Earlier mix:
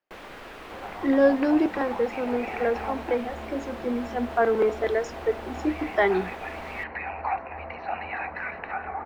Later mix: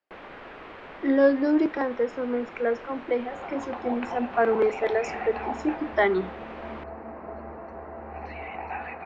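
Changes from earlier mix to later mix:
first sound: add low-pass 2.7 kHz 12 dB/octave; second sound: entry +2.60 s; master: add bass shelf 65 Hz -7 dB

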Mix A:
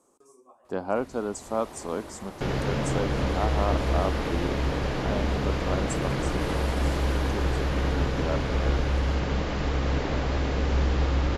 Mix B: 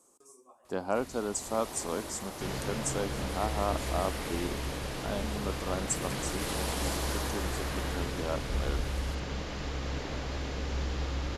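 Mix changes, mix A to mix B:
speech -3.5 dB; second sound -9.5 dB; master: add treble shelf 3.6 kHz +11 dB

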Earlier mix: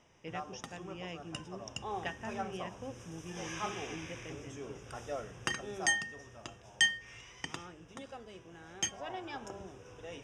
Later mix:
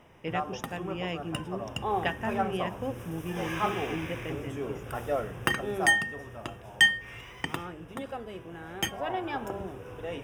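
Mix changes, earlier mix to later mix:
background: add treble shelf 5 kHz -11.5 dB; master: remove four-pole ladder low-pass 6.9 kHz, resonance 55%

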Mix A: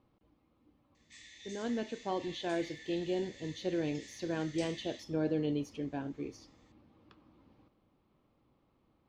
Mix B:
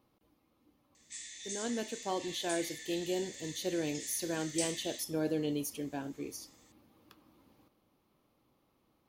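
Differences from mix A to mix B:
speech: add bass shelf 160 Hz -6 dB; master: remove distance through air 180 m

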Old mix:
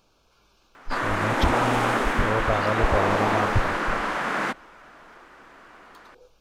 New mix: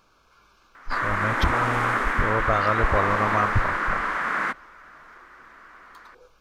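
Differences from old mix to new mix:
background -6.0 dB; master: add high-order bell 1.5 kHz +8.5 dB 1.3 oct

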